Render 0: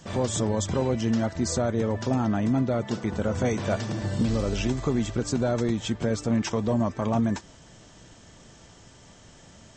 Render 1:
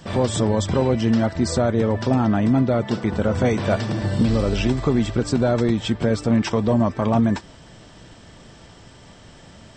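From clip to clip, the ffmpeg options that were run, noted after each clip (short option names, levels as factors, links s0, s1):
-af "equalizer=f=6600:w=4.6:g=-13,volume=2"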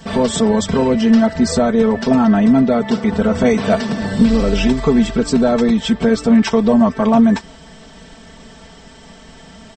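-af "aecho=1:1:4.5:0.99,volume=1.33"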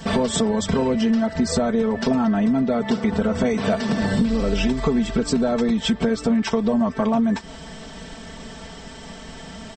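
-af "acompressor=threshold=0.1:ratio=6,volume=1.33"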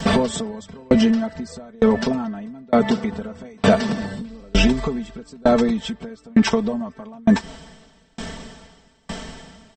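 -af "aeval=exprs='val(0)*pow(10,-34*if(lt(mod(1.1*n/s,1),2*abs(1.1)/1000),1-mod(1.1*n/s,1)/(2*abs(1.1)/1000),(mod(1.1*n/s,1)-2*abs(1.1)/1000)/(1-2*abs(1.1)/1000))/20)':c=same,volume=2.82"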